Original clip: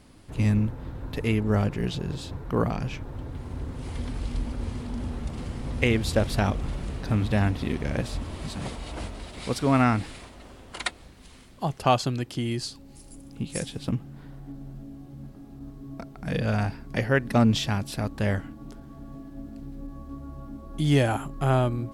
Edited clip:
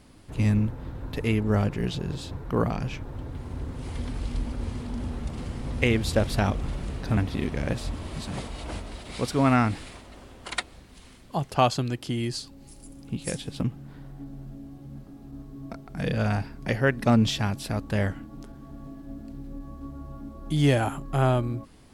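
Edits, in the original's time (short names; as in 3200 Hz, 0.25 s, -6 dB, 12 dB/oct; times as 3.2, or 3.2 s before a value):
7.17–7.45 cut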